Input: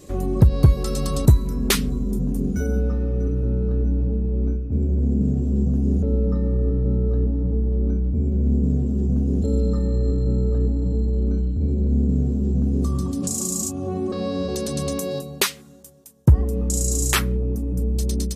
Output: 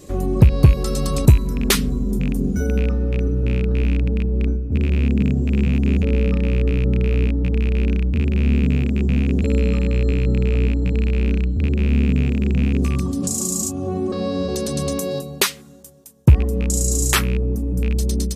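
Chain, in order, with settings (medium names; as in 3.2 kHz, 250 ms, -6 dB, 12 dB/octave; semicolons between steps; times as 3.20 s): rattle on loud lows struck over -17 dBFS, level -23 dBFS; trim +2.5 dB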